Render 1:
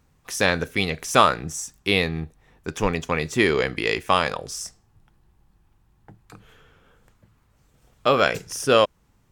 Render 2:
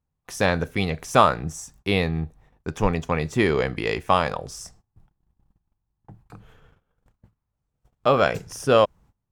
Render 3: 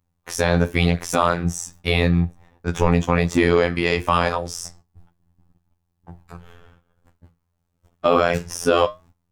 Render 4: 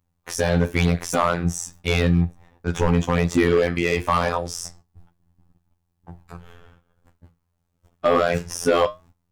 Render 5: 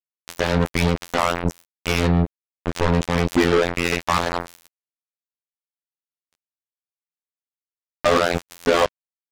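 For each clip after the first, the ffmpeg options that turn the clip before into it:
-af "bass=f=250:g=10,treble=f=4k:g=0,agate=range=-21dB:threshold=-46dB:ratio=16:detection=peak,equalizer=f=760:t=o:w=1.7:g=8,volume=-6dB"
-af "afftfilt=real='hypot(re,im)*cos(PI*b)':imag='0':win_size=2048:overlap=0.75,flanger=delay=7.5:depth=4.6:regen=-76:speed=0.43:shape=triangular,alimiter=level_in=15dB:limit=-1dB:release=50:level=0:latency=1,volume=-1dB"
-af "volume=9dB,asoftclip=hard,volume=-9dB"
-filter_complex "[0:a]aeval=exprs='val(0)+0.5*0.0237*sgn(val(0))':c=same,acrossover=split=5400[a][b];[b]acompressor=threshold=-39dB:ratio=4:attack=1:release=60[c];[a][c]amix=inputs=2:normalize=0,acrusher=bits=2:mix=0:aa=0.5"

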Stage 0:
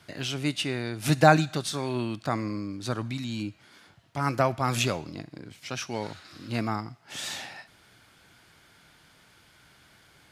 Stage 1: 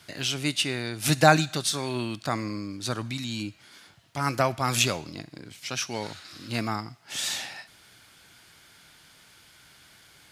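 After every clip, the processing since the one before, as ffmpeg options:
-af "highshelf=f=2.3k:g=8.5,volume=-1dB"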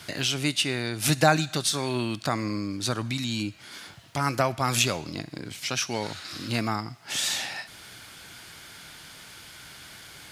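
-af "acompressor=threshold=-45dB:ratio=1.5,volume=9dB"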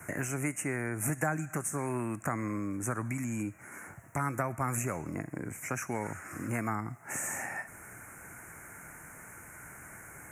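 -filter_complex "[0:a]asuperstop=centerf=3900:order=8:qfactor=0.81,acrossover=split=430|940[a][b][c];[a]acompressor=threshold=-33dB:ratio=4[d];[b]acompressor=threshold=-43dB:ratio=4[e];[c]acompressor=threshold=-33dB:ratio=4[f];[d][e][f]amix=inputs=3:normalize=0"

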